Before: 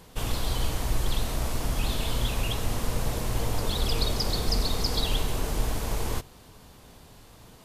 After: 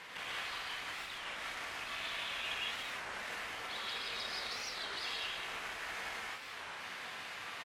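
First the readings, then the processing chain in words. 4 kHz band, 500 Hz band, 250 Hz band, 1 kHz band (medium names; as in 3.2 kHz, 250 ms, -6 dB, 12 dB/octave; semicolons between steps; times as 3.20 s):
-7.5 dB, -15.5 dB, -22.5 dB, -7.0 dB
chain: compression, threshold -39 dBFS, peak gain reduction 18.5 dB; hard clipper -40 dBFS, distortion -11 dB; vibrato 2.3 Hz 5 cents; band-pass filter 2 kHz, Q 2.1; on a send: delay 208 ms -9 dB; on the sum: gated-style reverb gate 200 ms rising, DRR -4.5 dB; warped record 33 1/3 rpm, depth 250 cents; trim +13 dB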